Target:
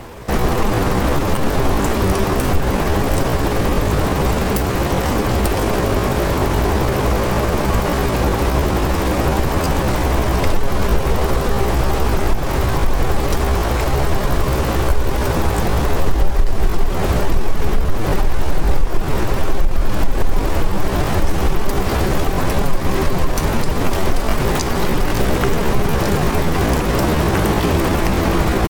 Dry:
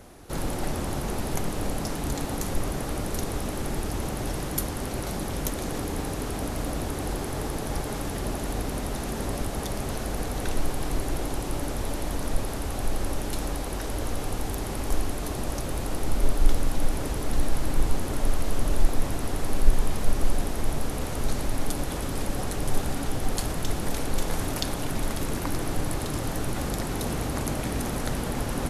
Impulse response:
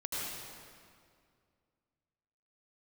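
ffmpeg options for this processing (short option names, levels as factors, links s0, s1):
-filter_complex "[0:a]lowpass=f=3700:p=1,asplit=2[s0][s1];[s1]acompressor=threshold=0.0447:ratio=6,volume=1.19[s2];[s0][s2]amix=inputs=2:normalize=0,alimiter=limit=0.237:level=0:latency=1:release=143,asetrate=60591,aresample=44100,atempo=0.727827,volume=2.51"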